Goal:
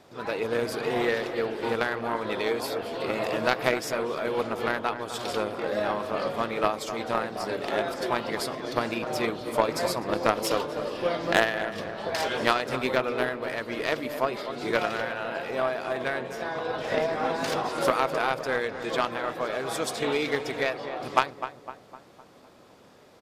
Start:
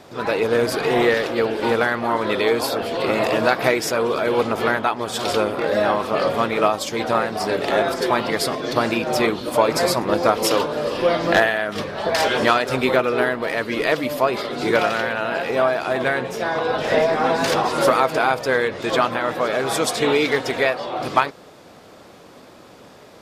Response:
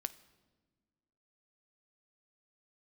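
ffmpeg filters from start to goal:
-filter_complex "[0:a]aeval=exprs='0.891*(cos(1*acos(clip(val(0)/0.891,-1,1)))-cos(1*PI/2))+0.178*(cos(3*acos(clip(val(0)/0.891,-1,1)))-cos(3*PI/2))':c=same,asplit=2[s0][s1];[s1]adelay=254,lowpass=f=1800:p=1,volume=0.316,asplit=2[s2][s3];[s3]adelay=254,lowpass=f=1800:p=1,volume=0.53,asplit=2[s4][s5];[s5]adelay=254,lowpass=f=1800:p=1,volume=0.53,asplit=2[s6][s7];[s7]adelay=254,lowpass=f=1800:p=1,volume=0.53,asplit=2[s8][s9];[s9]adelay=254,lowpass=f=1800:p=1,volume=0.53,asplit=2[s10][s11];[s11]adelay=254,lowpass=f=1800:p=1,volume=0.53[s12];[s0][s2][s4][s6][s8][s10][s12]amix=inputs=7:normalize=0,volume=0.794"

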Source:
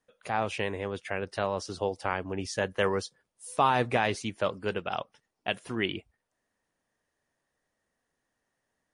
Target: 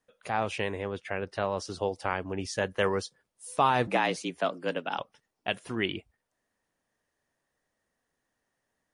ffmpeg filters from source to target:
-filter_complex "[0:a]asettb=1/sr,asplit=3[s0][s1][s2];[s0]atrim=end=0.824[s3];[s1]atrim=start=0.82:end=1.52,asetpts=PTS-STARTPTS,afade=t=in:d=0.004:c=qsin,afade=t=out:st=0.696:d=0.004:c=qsin,highshelf=f=5800:g=-9.5[s4];[s2]atrim=start=1.516[s5];[s3][s4]acrossfade=d=0.004:c1=hsin:c2=qsin[s6];[s6][s5]acrossfade=d=0.004:c1=qsin:c2=hsin,asettb=1/sr,asplit=3[s7][s8][s9];[s7]atrim=end=3.874[s10];[s8]atrim=start=3.87:end=4.99,asetpts=PTS-STARTPTS,afade=t=in:d=0.004:c=qsin,afade=t=out:st=1.116:d=0.004:c=qsin,afreqshift=75[s11];[s9]atrim=start=4.986[s12];[s10][s11]acrossfade=d=0.004:c1=hsin:c2=qsin[s13];[s13][s12]acrossfade=d=0.004:c1=qsin:c2=hsin"

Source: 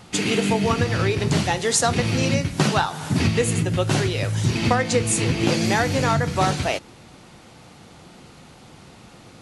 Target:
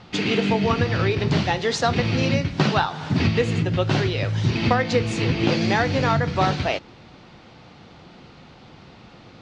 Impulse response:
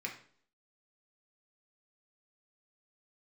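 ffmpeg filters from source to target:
-af "lowpass=f=4900:w=0.5412,lowpass=f=4900:w=1.3066"

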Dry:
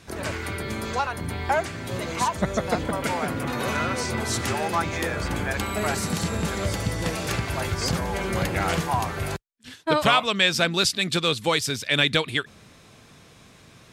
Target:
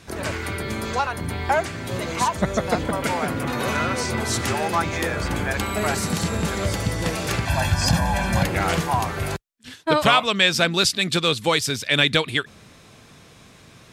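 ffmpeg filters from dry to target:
-filter_complex "[0:a]asettb=1/sr,asplit=3[s0][s1][s2];[s0]atrim=end=7.454[s3];[s1]atrim=start=7.45:end=8.43,asetpts=PTS-STARTPTS,afade=t=in:d=0.004:c=qsin,afade=t=out:st=0.976:d=0.004:c=qsin,aecho=1:1:1.2:0.95,atrim=end_sample=43218[s4];[s2]atrim=start=8.426[s5];[s3][s4]acrossfade=d=0.004:c1=hsin:c2=qsin[s6];[s6][s5]acrossfade=d=0.004:c1=qsin:c2=hsin,volume=1.33"

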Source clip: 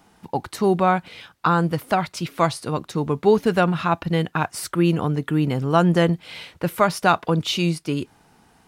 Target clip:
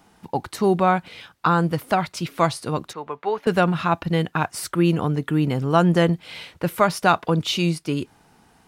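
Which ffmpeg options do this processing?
-filter_complex "[0:a]asettb=1/sr,asplit=3[s0][s1][s2];[s0]atrim=end=2.934[s3];[s1]atrim=start=2.93:end=3.47,asetpts=PTS-STARTPTS,afade=t=in:d=0.004:c=qsin,afade=t=out:st=0.536:d=0.004:c=qsin,acrossover=split=530 3100:gain=0.0891 1 0.141[s4][s5][s6];[s4][s5][s6]amix=inputs=3:normalize=0[s7];[s2]atrim=start=3.466[s8];[s3][s7]acrossfade=d=0.004:c1=hsin:c2=qsin[s9];[s9][s8]acrossfade=d=0.004:c1=qsin:c2=hsin"

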